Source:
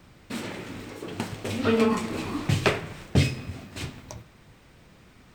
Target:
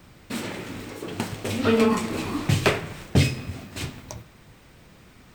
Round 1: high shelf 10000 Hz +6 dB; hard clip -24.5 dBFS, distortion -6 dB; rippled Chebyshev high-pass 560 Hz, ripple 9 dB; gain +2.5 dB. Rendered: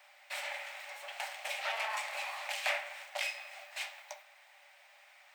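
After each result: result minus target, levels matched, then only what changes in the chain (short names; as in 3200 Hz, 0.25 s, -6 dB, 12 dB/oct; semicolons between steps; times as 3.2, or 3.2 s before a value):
hard clip: distortion +16 dB; 500 Hz band -6.5 dB
change: hard clip -13 dBFS, distortion -22 dB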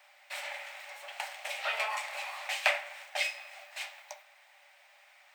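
500 Hz band -6.5 dB
remove: rippled Chebyshev high-pass 560 Hz, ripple 9 dB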